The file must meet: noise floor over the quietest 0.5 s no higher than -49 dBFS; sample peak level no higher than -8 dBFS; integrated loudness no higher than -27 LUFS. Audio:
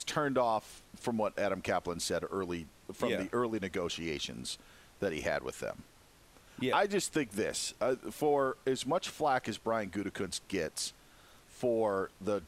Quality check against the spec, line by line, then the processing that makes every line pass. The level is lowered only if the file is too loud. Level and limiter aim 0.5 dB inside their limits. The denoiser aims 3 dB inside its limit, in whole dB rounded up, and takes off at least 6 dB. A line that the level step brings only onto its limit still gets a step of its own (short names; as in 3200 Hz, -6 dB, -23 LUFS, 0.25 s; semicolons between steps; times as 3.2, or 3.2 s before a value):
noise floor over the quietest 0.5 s -61 dBFS: OK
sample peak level -16.0 dBFS: OK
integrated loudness -34.0 LUFS: OK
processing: none